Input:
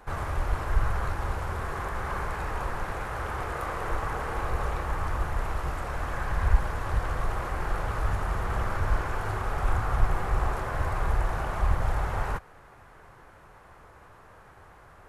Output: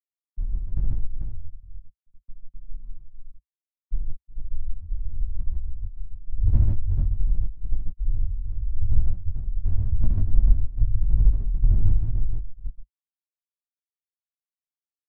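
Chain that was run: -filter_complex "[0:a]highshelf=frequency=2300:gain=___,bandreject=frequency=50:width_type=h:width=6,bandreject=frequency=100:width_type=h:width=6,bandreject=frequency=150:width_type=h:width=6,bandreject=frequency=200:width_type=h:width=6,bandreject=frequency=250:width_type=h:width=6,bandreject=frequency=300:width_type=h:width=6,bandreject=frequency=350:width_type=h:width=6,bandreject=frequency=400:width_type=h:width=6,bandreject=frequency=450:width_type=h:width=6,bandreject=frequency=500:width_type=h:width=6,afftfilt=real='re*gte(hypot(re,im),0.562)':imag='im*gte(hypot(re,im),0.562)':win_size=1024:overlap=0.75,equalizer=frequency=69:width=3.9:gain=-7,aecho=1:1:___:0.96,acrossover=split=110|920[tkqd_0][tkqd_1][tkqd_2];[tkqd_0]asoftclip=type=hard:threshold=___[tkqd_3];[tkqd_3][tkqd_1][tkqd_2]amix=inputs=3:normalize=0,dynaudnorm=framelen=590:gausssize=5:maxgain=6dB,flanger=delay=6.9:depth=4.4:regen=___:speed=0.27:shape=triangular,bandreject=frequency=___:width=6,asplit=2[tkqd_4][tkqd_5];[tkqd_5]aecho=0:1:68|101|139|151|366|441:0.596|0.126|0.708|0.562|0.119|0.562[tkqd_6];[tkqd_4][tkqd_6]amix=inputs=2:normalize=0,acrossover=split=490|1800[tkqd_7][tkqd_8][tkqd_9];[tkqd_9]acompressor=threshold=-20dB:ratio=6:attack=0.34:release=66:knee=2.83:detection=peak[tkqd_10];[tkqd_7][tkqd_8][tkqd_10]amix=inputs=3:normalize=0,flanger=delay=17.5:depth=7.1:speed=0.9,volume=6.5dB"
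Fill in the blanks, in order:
-7.5, 0.9, -18.5dB, -32, 490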